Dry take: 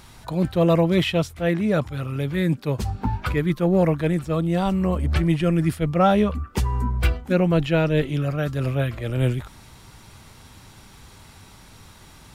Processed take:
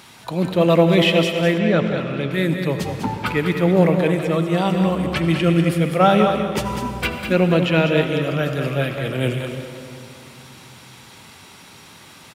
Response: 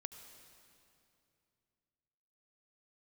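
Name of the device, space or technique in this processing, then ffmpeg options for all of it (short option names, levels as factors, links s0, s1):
PA in a hall: -filter_complex "[0:a]highpass=170,equalizer=f=2700:t=o:w=1.1:g=4.5,aecho=1:1:199:0.422[s0];[1:a]atrim=start_sample=2205[s1];[s0][s1]afir=irnorm=-1:irlink=0,asettb=1/sr,asplit=3[s2][s3][s4];[s2]atrim=end=1.584[s5];[s3]atrim=start=1.58:end=2.31,asetpts=PTS-STARTPTS,afade=t=in:d=0.004:c=qsin,afade=t=out:st=0.726:d=0.004:c=qsin,lowpass=5100[s6];[s4]atrim=start=2.306[s7];[s5][s6]acrossfade=d=0.004:c1=hsin:c2=qsin[s8];[s8][s7]acrossfade=d=0.004:c1=qsin:c2=hsin,volume=2.37"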